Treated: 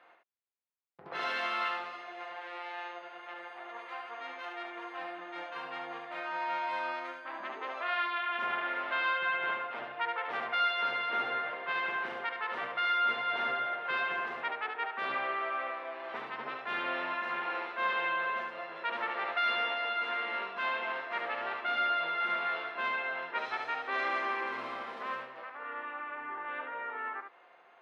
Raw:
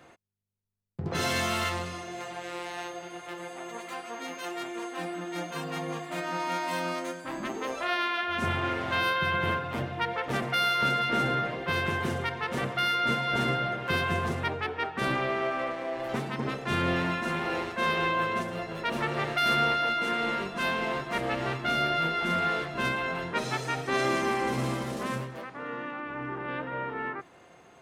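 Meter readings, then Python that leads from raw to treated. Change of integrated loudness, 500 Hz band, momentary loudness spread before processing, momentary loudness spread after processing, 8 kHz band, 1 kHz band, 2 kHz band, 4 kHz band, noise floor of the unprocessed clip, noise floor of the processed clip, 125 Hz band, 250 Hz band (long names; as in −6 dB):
−4.5 dB, −8.5 dB, 11 LU, 12 LU, below −20 dB, −3.0 dB, −2.5 dB, −6.5 dB, −55 dBFS, −59 dBFS, below −25 dB, −17.0 dB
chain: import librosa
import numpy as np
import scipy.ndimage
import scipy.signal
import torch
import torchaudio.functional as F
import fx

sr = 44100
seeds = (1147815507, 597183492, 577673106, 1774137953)

y = scipy.signal.sosfilt(scipy.signal.butter(2, 800.0, 'highpass', fs=sr, output='sos'), x)
y = fx.air_absorb(y, sr, metres=370.0)
y = y + 10.0 ** (-5.0 / 20.0) * np.pad(y, (int(72 * sr / 1000.0), 0))[:len(y)]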